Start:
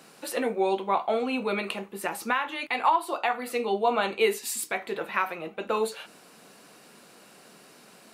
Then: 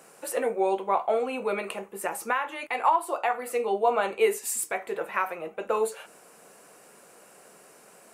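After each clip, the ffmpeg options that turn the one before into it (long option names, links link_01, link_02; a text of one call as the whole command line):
ffmpeg -i in.wav -af "equalizer=frequency=125:width_type=o:width=1:gain=-4,equalizer=frequency=250:width_type=o:width=1:gain=-7,equalizer=frequency=500:width_type=o:width=1:gain=4,equalizer=frequency=4000:width_type=o:width=1:gain=-11,equalizer=frequency=8000:width_type=o:width=1:gain=5" out.wav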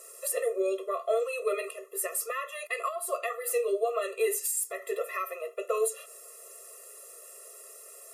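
ffmpeg -i in.wav -af "equalizer=frequency=13000:width_type=o:width=1.8:gain=14,alimiter=limit=-16.5dB:level=0:latency=1:release=248,afftfilt=real='re*eq(mod(floor(b*sr/1024/350),2),1)':imag='im*eq(mod(floor(b*sr/1024/350),2),1)':win_size=1024:overlap=0.75" out.wav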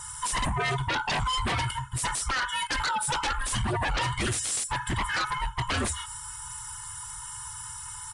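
ffmpeg -i in.wav -af "afftfilt=real='real(if(between(b,1,1008),(2*floor((b-1)/24)+1)*24-b,b),0)':imag='imag(if(between(b,1,1008),(2*floor((b-1)/24)+1)*24-b,b),0)*if(between(b,1,1008),-1,1)':win_size=2048:overlap=0.75,aeval=exprs='0.158*sin(PI/2*5.62*val(0)/0.158)':channel_layout=same,aresample=22050,aresample=44100,volume=-8dB" out.wav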